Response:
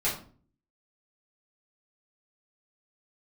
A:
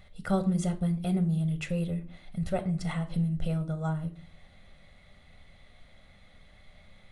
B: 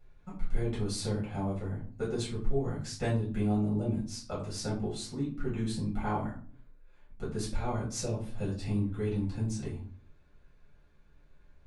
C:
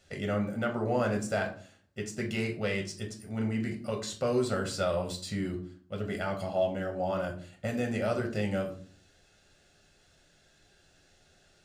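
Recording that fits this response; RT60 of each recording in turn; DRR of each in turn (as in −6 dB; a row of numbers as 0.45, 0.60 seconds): B; 0.45, 0.45, 0.45 seconds; 7.5, −8.5, 1.0 decibels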